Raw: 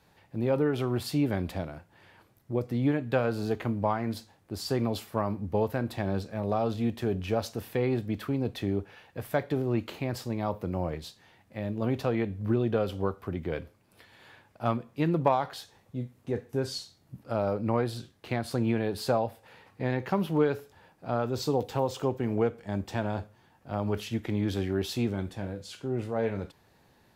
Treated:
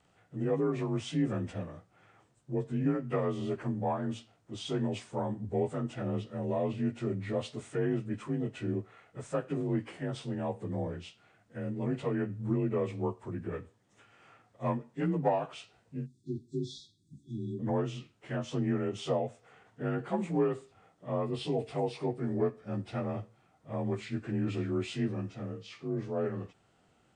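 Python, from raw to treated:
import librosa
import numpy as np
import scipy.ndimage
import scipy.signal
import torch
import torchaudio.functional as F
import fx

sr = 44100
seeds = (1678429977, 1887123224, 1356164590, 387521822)

y = fx.partial_stretch(x, sr, pct=88)
y = fx.spec_erase(y, sr, start_s=16.06, length_s=1.54, low_hz=390.0, high_hz=3300.0)
y = y * 10.0 ** (-2.5 / 20.0)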